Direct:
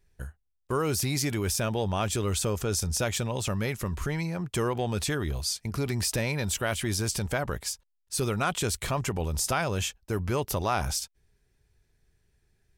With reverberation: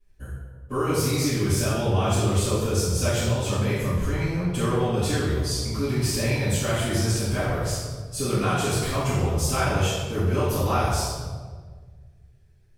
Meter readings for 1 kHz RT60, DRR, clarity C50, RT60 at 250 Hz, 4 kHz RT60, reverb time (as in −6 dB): 1.4 s, −15.5 dB, −1.5 dB, 1.9 s, 1.0 s, 1.6 s